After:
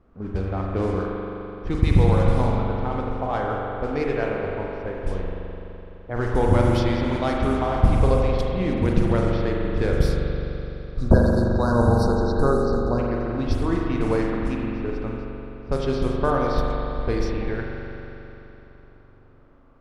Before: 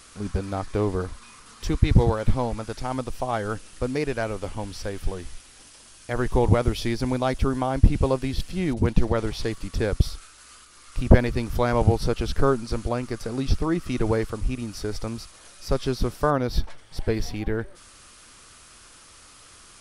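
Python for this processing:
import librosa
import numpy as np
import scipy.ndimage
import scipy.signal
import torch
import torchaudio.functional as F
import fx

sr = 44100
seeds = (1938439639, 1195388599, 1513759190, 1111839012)

y = fx.env_lowpass(x, sr, base_hz=540.0, full_db=-17.0)
y = fx.spec_erase(y, sr, start_s=10.62, length_s=2.37, low_hz=1700.0, high_hz=3700.0)
y = fx.rev_spring(y, sr, rt60_s=3.4, pass_ms=(42,), chirp_ms=45, drr_db=-2.0)
y = F.gain(torch.from_numpy(y), -1.5).numpy()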